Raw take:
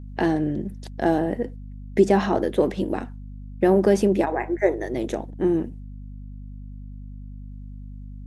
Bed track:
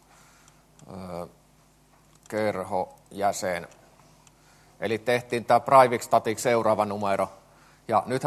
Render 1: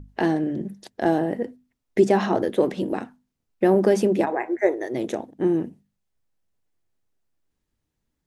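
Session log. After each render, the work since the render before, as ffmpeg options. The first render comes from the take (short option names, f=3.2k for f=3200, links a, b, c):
-af "bandreject=f=50:t=h:w=6,bandreject=f=100:t=h:w=6,bandreject=f=150:t=h:w=6,bandreject=f=200:t=h:w=6,bandreject=f=250:t=h:w=6"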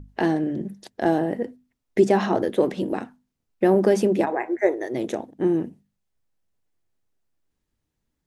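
-af anull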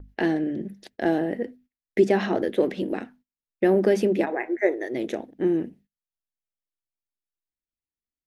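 -af "agate=range=-21dB:threshold=-51dB:ratio=16:detection=peak,equalizer=f=125:t=o:w=1:g=-7,equalizer=f=1k:t=o:w=1:g=-8,equalizer=f=2k:t=o:w=1:g=4,equalizer=f=8k:t=o:w=1:g=-8"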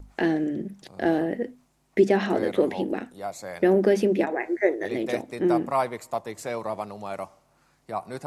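-filter_complex "[1:a]volume=-8.5dB[a];[0:a][a]amix=inputs=2:normalize=0"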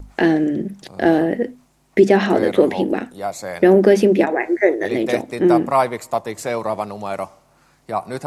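-af "volume=8dB,alimiter=limit=-2dB:level=0:latency=1"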